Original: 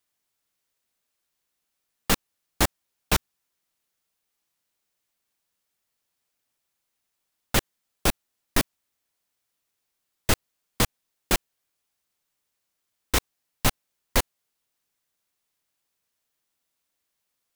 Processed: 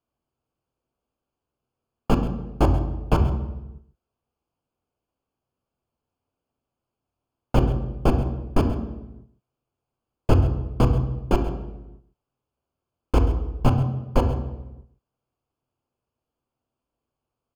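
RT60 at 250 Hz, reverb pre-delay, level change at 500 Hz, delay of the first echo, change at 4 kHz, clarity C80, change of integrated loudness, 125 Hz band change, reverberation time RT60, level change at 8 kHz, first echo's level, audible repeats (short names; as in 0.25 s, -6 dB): 1.1 s, 3 ms, +6.5 dB, 0.132 s, -11.5 dB, 10.0 dB, +3.0 dB, +12.0 dB, 1.0 s, under -15 dB, -15.0 dB, 1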